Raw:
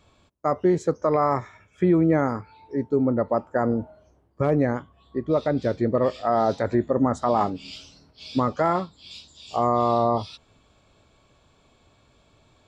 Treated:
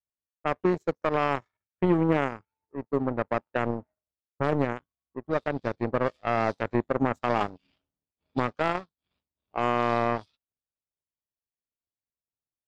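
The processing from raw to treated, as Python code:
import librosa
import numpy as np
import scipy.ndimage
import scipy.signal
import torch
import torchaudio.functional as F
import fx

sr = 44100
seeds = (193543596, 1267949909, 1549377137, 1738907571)

y = fx.power_curve(x, sr, exponent=2.0)
y = fx.env_lowpass(y, sr, base_hz=1000.0, full_db=-23.5)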